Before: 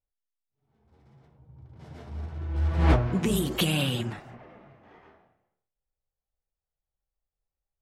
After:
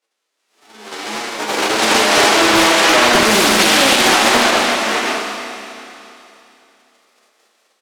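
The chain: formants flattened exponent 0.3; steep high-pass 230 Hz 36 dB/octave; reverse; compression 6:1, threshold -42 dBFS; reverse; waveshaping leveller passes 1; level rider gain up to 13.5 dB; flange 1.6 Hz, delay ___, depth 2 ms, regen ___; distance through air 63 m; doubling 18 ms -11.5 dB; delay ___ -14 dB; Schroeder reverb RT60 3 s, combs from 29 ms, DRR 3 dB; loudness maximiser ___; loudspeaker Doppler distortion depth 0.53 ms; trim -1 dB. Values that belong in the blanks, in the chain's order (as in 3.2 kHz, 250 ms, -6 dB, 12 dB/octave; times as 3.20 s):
8.4 ms, +33%, 214 ms, +23 dB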